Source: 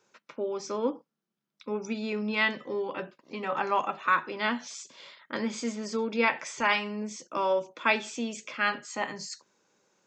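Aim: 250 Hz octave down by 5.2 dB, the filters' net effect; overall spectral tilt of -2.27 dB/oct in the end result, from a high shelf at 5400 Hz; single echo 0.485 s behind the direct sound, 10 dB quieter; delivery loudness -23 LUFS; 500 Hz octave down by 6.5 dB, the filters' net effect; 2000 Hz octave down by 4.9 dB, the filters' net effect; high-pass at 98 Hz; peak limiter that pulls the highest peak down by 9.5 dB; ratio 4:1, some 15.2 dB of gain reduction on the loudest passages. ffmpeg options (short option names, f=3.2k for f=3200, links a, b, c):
-af "highpass=98,equalizer=f=250:t=o:g=-4.5,equalizer=f=500:t=o:g=-6.5,equalizer=f=2k:t=o:g=-6.5,highshelf=f=5.4k:g=5.5,acompressor=threshold=-42dB:ratio=4,alimiter=level_in=10dB:limit=-24dB:level=0:latency=1,volume=-10dB,aecho=1:1:485:0.316,volume=22dB"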